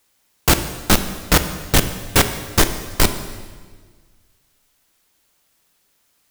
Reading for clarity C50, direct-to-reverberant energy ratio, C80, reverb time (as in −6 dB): 10.0 dB, 8.0 dB, 11.5 dB, 1.6 s